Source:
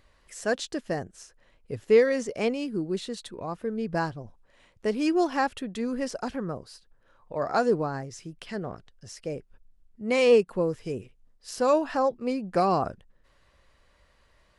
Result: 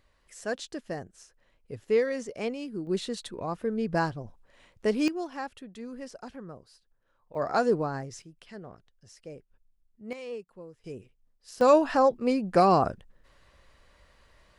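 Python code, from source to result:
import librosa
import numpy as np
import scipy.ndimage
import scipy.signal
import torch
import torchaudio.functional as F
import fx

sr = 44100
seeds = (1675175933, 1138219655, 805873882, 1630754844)

y = fx.gain(x, sr, db=fx.steps((0.0, -5.5), (2.87, 1.0), (5.08, -10.5), (7.35, -1.0), (8.22, -10.0), (10.13, -19.5), (10.84, -8.0), (11.61, 3.0)))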